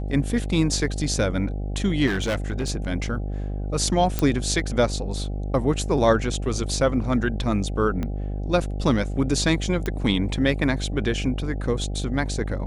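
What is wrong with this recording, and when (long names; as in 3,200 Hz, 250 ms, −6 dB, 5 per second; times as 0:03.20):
mains buzz 50 Hz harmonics 16 −28 dBFS
0:02.06–0:02.70: clipping −20.5 dBFS
0:04.19: click −8 dBFS
0:08.03: click −16 dBFS
0:09.86: click −13 dBFS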